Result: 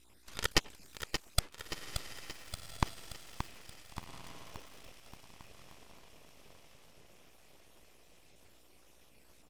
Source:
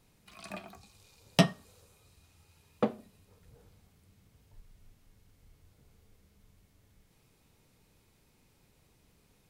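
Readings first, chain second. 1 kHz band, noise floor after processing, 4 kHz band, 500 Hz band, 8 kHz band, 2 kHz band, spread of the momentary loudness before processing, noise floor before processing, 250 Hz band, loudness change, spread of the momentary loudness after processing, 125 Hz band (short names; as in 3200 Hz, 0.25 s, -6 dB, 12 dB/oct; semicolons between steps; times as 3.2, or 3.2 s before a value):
-1.5 dB, -61 dBFS, +2.0 dB, -9.5 dB, +6.0 dB, +1.0 dB, 18 LU, -68 dBFS, -11.0 dB, -8.0 dB, 24 LU, -6.0 dB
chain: random spectral dropouts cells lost 55%; low shelf 490 Hz -8.5 dB; in parallel at -9 dB: fuzz box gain 42 dB, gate -44 dBFS; on the sum: flipped gate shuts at -19 dBFS, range -34 dB; on a send: diffused feedback echo 1.485 s, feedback 52%, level -10.5 dB; on the sum: hum 60 Hz, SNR 20 dB; full-wave rectifier; downsampling 32000 Hz; lo-fi delay 0.577 s, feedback 55%, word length 9-bit, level -8 dB; gain +9 dB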